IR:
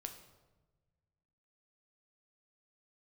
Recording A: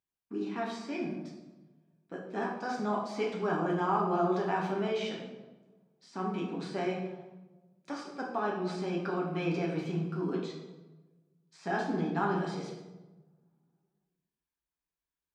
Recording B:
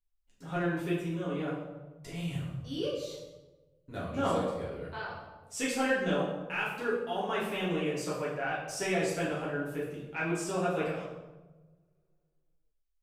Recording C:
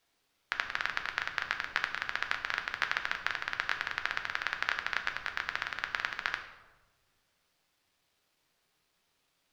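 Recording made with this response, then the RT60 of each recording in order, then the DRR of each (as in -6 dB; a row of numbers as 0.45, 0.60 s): C; 1.2, 1.2, 1.2 s; -2.5, -8.0, 5.0 dB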